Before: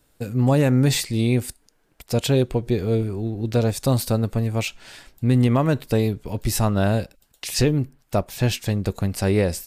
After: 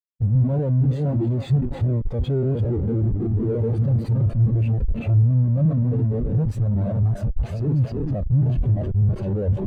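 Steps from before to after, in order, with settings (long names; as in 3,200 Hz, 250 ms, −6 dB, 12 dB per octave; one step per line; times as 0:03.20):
delay that plays each chunk backwards 404 ms, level −2.5 dB
0:05.43–0:06.05: parametric band 880 Hz −10.5 dB 0.55 octaves
on a send: feedback echo with a high-pass in the loop 317 ms, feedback 49%, high-pass 710 Hz, level −6.5 dB
on the sum: comparator with hysteresis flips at −28.5 dBFS
notch filter 5,300 Hz, Q 13
in parallel at −2 dB: brickwall limiter −20 dBFS, peak gain reduction 6.5 dB
on the sum: every bin expanded away from the loudest bin 2.5 to 1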